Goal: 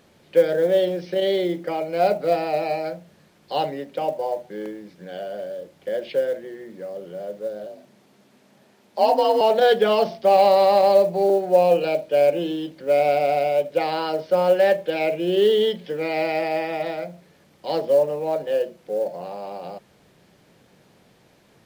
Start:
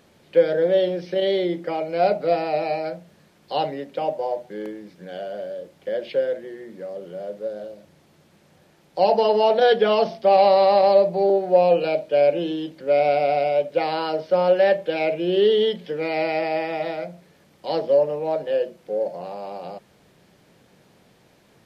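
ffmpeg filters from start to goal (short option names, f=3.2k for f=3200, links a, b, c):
-filter_complex "[0:a]asettb=1/sr,asplit=3[a][b][c];[a]atrim=end=7.664[d];[b]atrim=start=7.66:end=9.41,asetpts=PTS-STARTPTS,afade=t=in:d=0.004:c=qsin,afade=t=out:st=1.746:d=0.004:c=qsin,afreqshift=48[e];[c]atrim=start=9.406[f];[d][e]acrossfade=d=0.004:c1=hsin:c2=qsin[g];[g][f]acrossfade=d=0.004:c1=qsin:c2=hsin,acrusher=bits=8:mode=log:mix=0:aa=0.000001"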